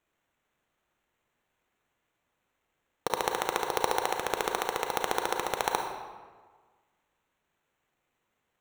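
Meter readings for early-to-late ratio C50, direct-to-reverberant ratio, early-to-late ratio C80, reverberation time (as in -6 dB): 4.0 dB, 3.0 dB, 6.0 dB, 1.5 s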